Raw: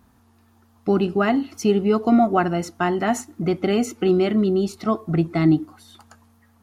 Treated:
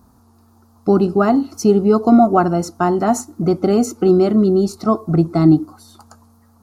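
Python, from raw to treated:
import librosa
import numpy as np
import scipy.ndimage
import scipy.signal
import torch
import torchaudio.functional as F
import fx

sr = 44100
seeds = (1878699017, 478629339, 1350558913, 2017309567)

y = fx.band_shelf(x, sr, hz=2400.0, db=-13.0, octaves=1.3)
y = F.gain(torch.from_numpy(y), 5.5).numpy()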